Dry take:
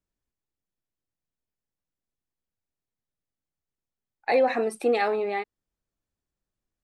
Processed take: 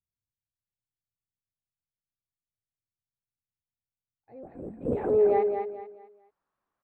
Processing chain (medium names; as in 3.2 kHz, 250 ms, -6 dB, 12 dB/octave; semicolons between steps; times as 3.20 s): low-pass sweep 110 Hz -> 1.1 kHz, 4.41–5.80 s; 4.43–5.10 s: LPC vocoder at 8 kHz whisper; tilt EQ +4.5 dB/octave; feedback delay 217 ms, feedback 31%, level -6 dB; transient shaper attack -5 dB, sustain 0 dB; trim +7 dB